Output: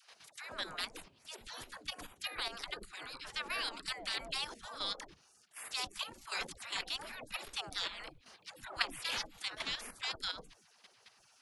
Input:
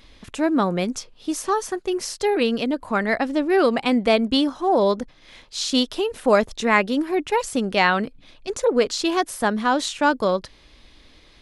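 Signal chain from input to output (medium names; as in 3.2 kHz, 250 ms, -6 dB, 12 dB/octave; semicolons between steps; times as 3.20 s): spectral gate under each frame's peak -25 dB weak; phase dispersion lows, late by 144 ms, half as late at 400 Hz; level held to a coarse grid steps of 10 dB; trim +3 dB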